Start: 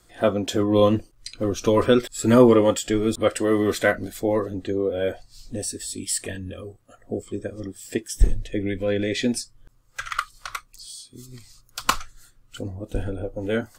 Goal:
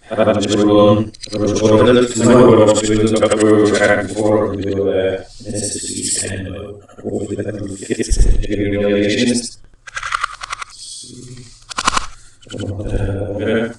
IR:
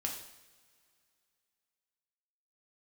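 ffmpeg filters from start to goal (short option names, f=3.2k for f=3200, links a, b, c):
-af "afftfilt=real='re':imag='-im':win_size=8192:overlap=0.75,apsyclip=15.5dB,aresample=22050,aresample=44100,volume=-2dB"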